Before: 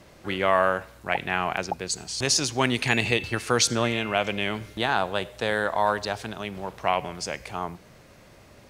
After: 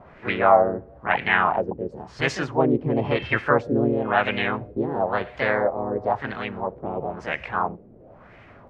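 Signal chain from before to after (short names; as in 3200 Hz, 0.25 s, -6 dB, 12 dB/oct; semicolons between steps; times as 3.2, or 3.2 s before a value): LFO low-pass sine 0.98 Hz 340–2000 Hz; harmoniser +3 st -2 dB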